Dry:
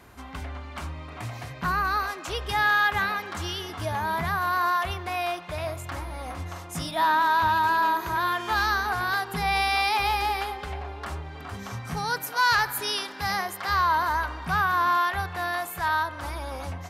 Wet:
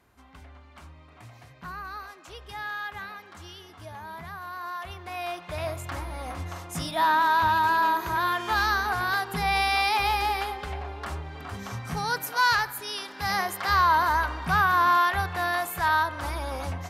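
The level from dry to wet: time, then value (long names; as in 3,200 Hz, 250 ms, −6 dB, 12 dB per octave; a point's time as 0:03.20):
0:04.60 −12.5 dB
0:05.63 0 dB
0:12.46 0 dB
0:12.84 −7 dB
0:13.42 +2 dB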